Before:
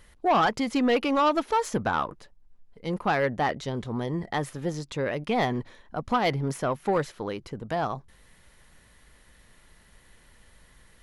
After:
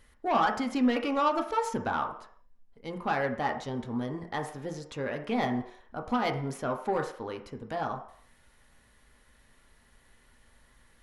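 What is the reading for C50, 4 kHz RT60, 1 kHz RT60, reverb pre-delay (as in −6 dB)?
9.5 dB, 0.60 s, 0.60 s, 3 ms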